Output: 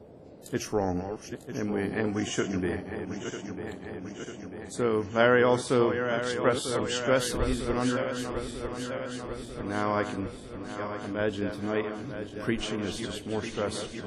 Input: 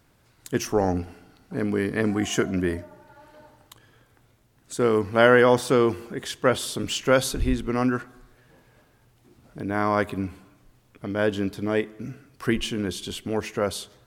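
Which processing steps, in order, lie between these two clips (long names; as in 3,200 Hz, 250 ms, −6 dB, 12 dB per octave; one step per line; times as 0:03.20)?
feedback delay that plays each chunk backwards 473 ms, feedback 80%, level −8.5 dB
noise in a band 69–590 Hz −44 dBFS
level −5.5 dB
WMA 32 kbit/s 44,100 Hz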